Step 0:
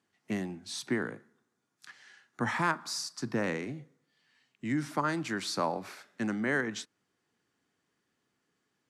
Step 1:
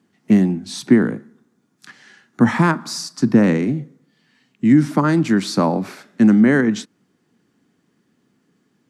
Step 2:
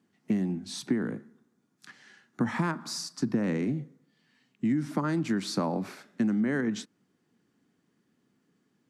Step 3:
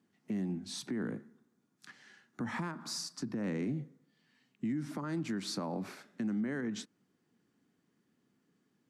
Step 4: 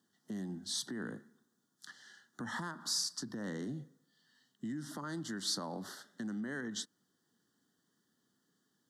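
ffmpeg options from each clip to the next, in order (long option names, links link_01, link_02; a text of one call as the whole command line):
ffmpeg -i in.wav -af "equalizer=frequency=210:width_type=o:width=1.8:gain=14,volume=8dB" out.wav
ffmpeg -i in.wav -af "acompressor=threshold=-16dB:ratio=6,volume=-8dB" out.wav
ffmpeg -i in.wav -af "alimiter=level_in=0.5dB:limit=-24dB:level=0:latency=1:release=120,volume=-0.5dB,volume=-3.5dB" out.wav
ffmpeg -i in.wav -af "asuperstop=centerf=2400:order=8:qfactor=2.2,tiltshelf=frequency=1300:gain=-6" out.wav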